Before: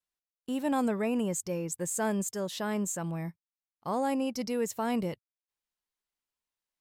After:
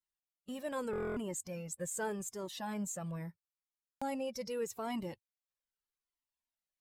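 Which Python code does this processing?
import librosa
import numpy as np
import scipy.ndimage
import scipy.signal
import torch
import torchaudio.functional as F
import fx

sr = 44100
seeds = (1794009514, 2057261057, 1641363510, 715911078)

y = fx.spec_quant(x, sr, step_db=15)
y = fx.buffer_glitch(y, sr, at_s=(0.91, 3.76), block=1024, repeats=10)
y = fx.comb_cascade(y, sr, direction='falling', hz=0.81)
y = y * 10.0 ** (-2.0 / 20.0)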